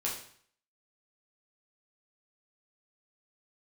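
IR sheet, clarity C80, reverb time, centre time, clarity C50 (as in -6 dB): 9.5 dB, 0.55 s, 34 ms, 5.5 dB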